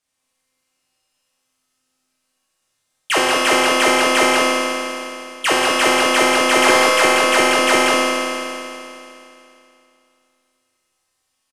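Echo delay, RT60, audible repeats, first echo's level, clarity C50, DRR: 186 ms, 2.8 s, 1, -2.5 dB, -5.5 dB, -9.0 dB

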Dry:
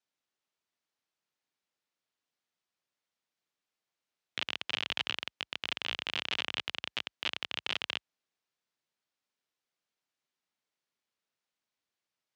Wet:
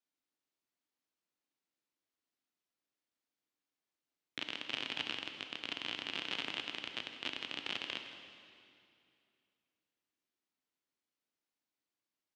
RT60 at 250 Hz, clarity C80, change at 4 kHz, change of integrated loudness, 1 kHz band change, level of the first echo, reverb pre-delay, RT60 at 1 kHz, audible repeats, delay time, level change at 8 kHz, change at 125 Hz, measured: 2.9 s, 7.0 dB, -5.0 dB, -5.0 dB, -4.5 dB, -14.5 dB, 16 ms, 2.5 s, 1, 161 ms, -5.0 dB, -3.5 dB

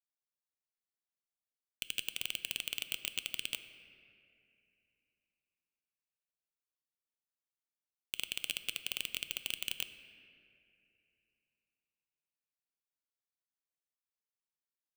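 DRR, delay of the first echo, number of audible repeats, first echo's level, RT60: 10.0 dB, no echo, no echo, no echo, 2.7 s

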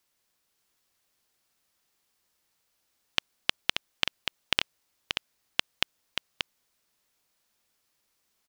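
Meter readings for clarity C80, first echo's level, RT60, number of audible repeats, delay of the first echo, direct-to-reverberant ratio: no reverb, -6.0 dB, no reverb, 1, 582 ms, no reverb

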